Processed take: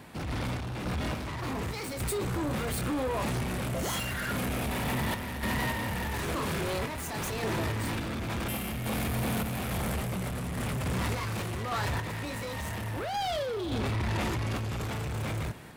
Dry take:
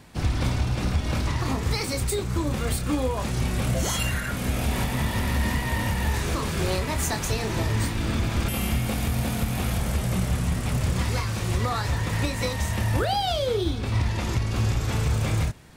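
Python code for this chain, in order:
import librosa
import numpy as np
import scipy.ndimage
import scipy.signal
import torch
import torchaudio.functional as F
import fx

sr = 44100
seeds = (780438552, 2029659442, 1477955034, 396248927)

p1 = fx.highpass(x, sr, hz=160.0, slope=6)
p2 = fx.peak_eq(p1, sr, hz=5900.0, db=-7.5, octaves=1.4)
p3 = fx.over_compress(p2, sr, threshold_db=-33.0, ratio=-1.0)
p4 = p2 + (p3 * 10.0 ** (2.0 / 20.0))
p5 = 10.0 ** (-26.5 / 20.0) * np.tanh(p4 / 10.0 ** (-26.5 / 20.0))
y = fx.tremolo_random(p5, sr, seeds[0], hz=3.5, depth_pct=55)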